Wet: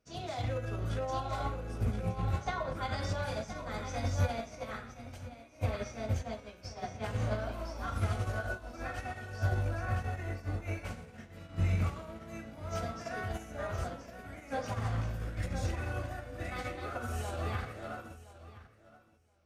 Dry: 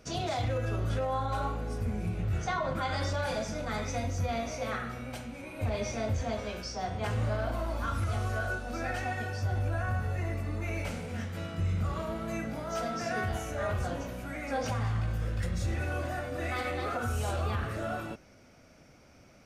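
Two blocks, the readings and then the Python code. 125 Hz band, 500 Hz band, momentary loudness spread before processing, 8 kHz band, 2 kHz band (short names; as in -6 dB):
-2.5 dB, -4.5 dB, 5 LU, -6.0 dB, -5.0 dB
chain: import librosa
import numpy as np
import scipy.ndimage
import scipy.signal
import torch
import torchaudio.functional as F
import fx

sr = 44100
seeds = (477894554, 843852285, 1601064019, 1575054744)

p1 = x + fx.echo_feedback(x, sr, ms=1020, feedback_pct=25, wet_db=-6.5, dry=0)
p2 = fx.upward_expand(p1, sr, threshold_db=-42.0, expansion=2.5)
y = p2 * 10.0 ** (2.5 / 20.0)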